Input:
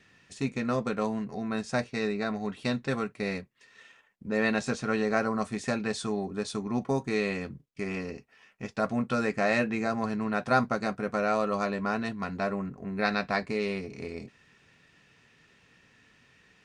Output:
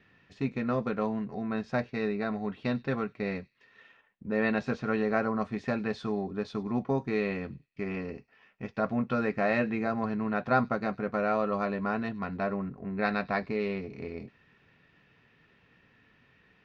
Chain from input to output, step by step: distance through air 260 m; on a send: feedback echo behind a high-pass 98 ms, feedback 36%, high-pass 4.1 kHz, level -17 dB

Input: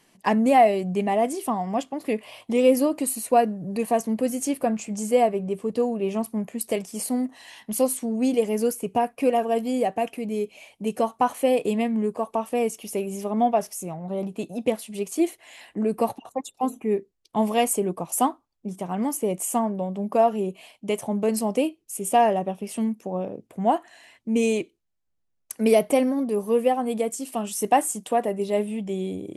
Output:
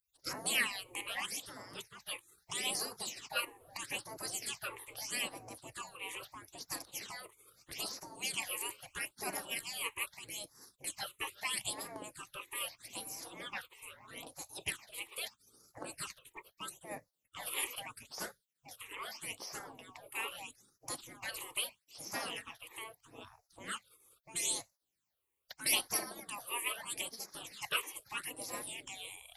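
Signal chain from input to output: tilt EQ +1.5 dB/octave; spectral gate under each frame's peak -25 dB weak; phase shifter stages 8, 0.78 Hz, lowest notch 190–3100 Hz; trim +5 dB

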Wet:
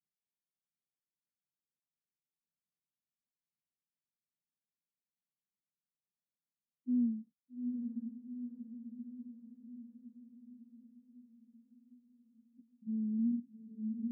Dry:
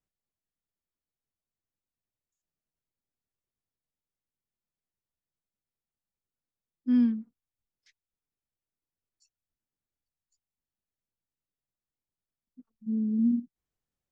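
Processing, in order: ladder band-pass 210 Hz, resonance 40%; echo that smears into a reverb 842 ms, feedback 58%, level -5 dB; trim +1 dB

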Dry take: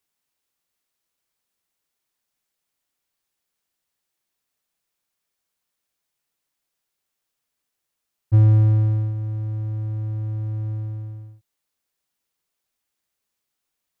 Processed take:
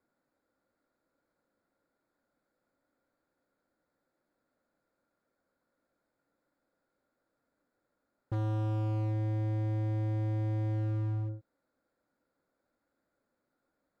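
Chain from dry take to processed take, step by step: local Wiener filter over 15 samples; compression 3:1, threshold -21 dBFS, peak gain reduction 8 dB; small resonant body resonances 280/530/1400 Hz, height 12 dB, ringing for 25 ms; overload inside the chain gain 34.5 dB; trim +4 dB

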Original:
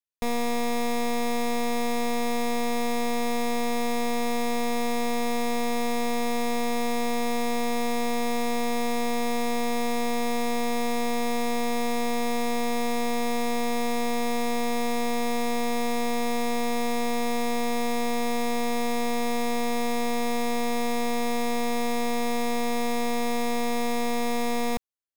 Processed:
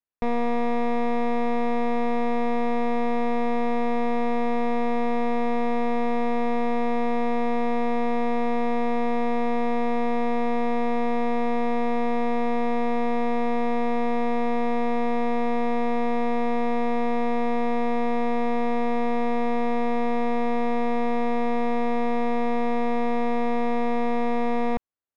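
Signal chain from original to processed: low-pass 1.8 kHz 12 dB/octave; trim +3 dB

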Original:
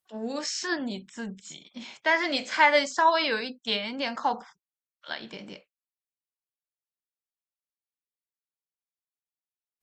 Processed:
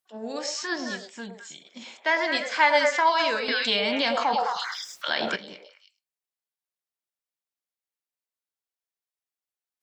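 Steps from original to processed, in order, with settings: bass shelf 140 Hz -12 dB; on a send: repeats whose band climbs or falls 106 ms, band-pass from 600 Hz, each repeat 1.4 oct, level -1 dB; 3.48–5.36 s: on the sum: level flattener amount 70%

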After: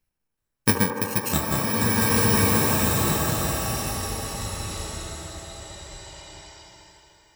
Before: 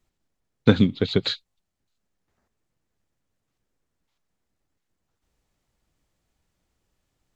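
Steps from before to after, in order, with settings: bit-reversed sample order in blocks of 64 samples; peaking EQ 1.8 kHz +6.5 dB 0.87 oct; ever faster or slower copies 377 ms, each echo -6 st, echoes 3, each echo -6 dB; feedback echo behind a band-pass 75 ms, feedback 82%, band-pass 700 Hz, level -4 dB; swelling reverb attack 1680 ms, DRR -5.5 dB; trim -4.5 dB

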